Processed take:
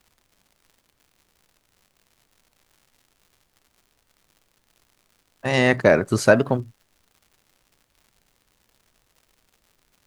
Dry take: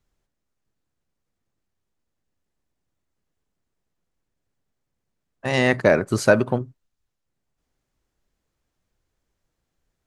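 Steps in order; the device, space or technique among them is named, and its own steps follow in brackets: warped LP (record warp 33 1/3 rpm, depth 160 cents; crackle 150/s -46 dBFS; pink noise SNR 43 dB); gain +1 dB

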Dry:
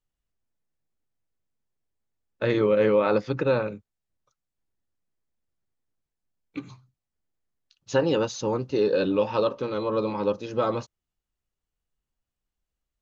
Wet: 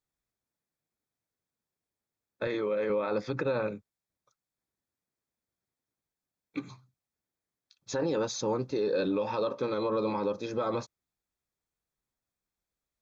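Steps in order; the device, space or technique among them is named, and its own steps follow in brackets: PA system with an anti-feedback notch (HPF 140 Hz 6 dB/oct; Butterworth band-stop 2900 Hz, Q 6.1; limiter -21.5 dBFS, peak gain reduction 11 dB); 2.47–2.9 HPF 260 Hz 6 dB/oct

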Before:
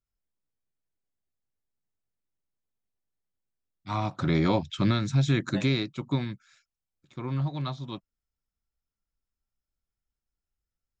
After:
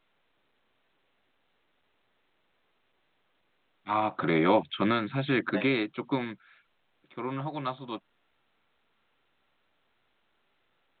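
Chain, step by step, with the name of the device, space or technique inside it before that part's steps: telephone (BPF 330–3100 Hz; gain +5 dB; A-law 64 kbps 8000 Hz)

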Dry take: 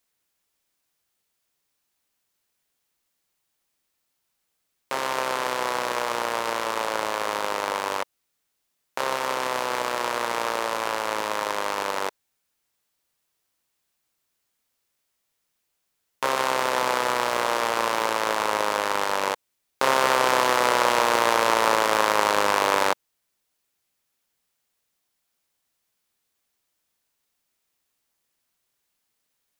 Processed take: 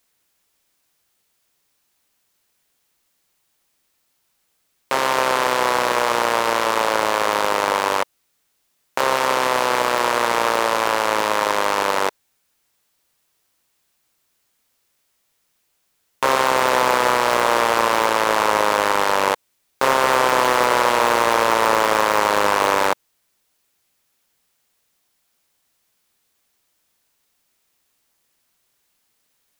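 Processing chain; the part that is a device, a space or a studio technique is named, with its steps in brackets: limiter into clipper (limiter -8.5 dBFS, peak gain reduction 5.5 dB; hard clip -13 dBFS, distortion -18 dB); gain +8 dB

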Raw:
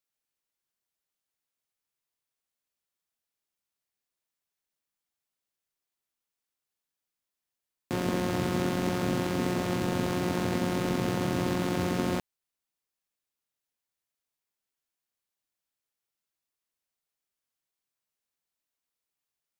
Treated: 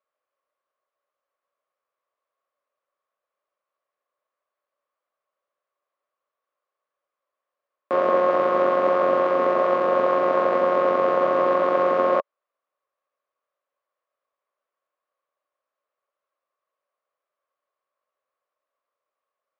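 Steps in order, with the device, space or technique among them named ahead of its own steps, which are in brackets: tin-can telephone (BPF 460–2000 Hz; small resonant body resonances 570/1100 Hz, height 17 dB, ringing for 25 ms); gain +4.5 dB

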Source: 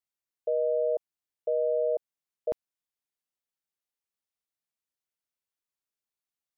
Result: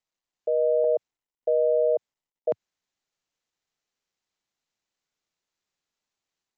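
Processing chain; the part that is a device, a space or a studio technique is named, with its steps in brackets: HPF 95 Hz 24 dB/oct; 0.84–2.49 low-pass opened by the level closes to 740 Hz, open at -24 dBFS; Bluetooth headset (HPF 110 Hz 24 dB/oct; AGC gain up to 5 dB; downsampling 16000 Hz; SBC 64 kbps 16000 Hz)

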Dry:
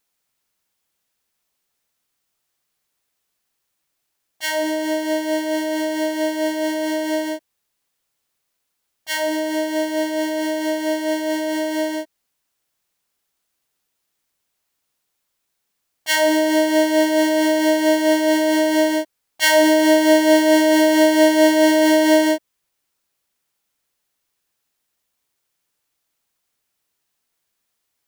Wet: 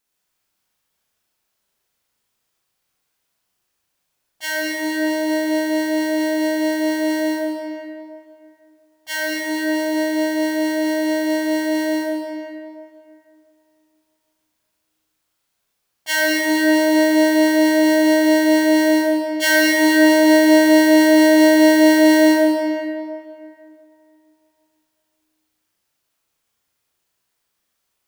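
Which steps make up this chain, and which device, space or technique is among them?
tunnel (flutter echo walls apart 6.2 m, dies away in 0.42 s; reverb RT60 2.6 s, pre-delay 53 ms, DRR -3.5 dB); gain -3.5 dB

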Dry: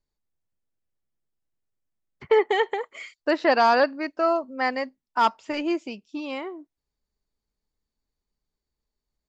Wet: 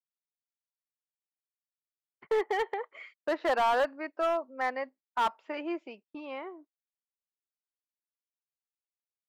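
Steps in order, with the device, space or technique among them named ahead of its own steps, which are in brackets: walkie-talkie (BPF 400–2200 Hz; hard clip -18 dBFS, distortion -13 dB; gate -49 dBFS, range -26 dB); gain -4.5 dB

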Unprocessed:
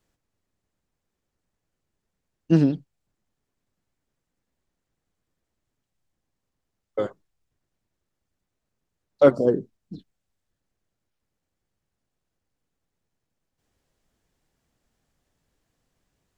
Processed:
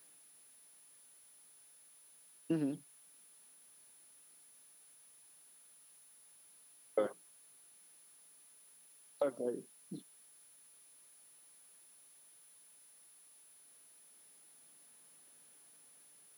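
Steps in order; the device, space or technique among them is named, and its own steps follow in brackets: medium wave at night (BPF 200–3800 Hz; compressor, threshold -30 dBFS, peak gain reduction 19 dB; tremolo 0.26 Hz, depth 52%; whine 10000 Hz -63 dBFS; white noise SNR 22 dB); HPF 130 Hz 6 dB/oct; gain +2.5 dB

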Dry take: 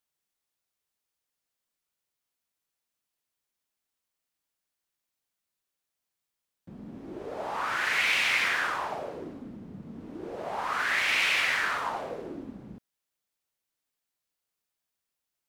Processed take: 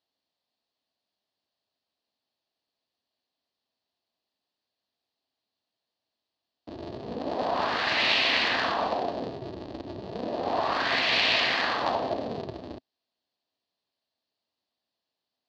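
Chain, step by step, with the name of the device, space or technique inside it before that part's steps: ring modulator pedal into a guitar cabinet (polarity switched at an audio rate 130 Hz; speaker cabinet 91–4400 Hz, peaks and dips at 150 Hz -5 dB, 260 Hz +5 dB, 670 Hz +7 dB, 1400 Hz -9 dB, 2200 Hz -8 dB, 4400 Hz +8 dB); gain +4.5 dB

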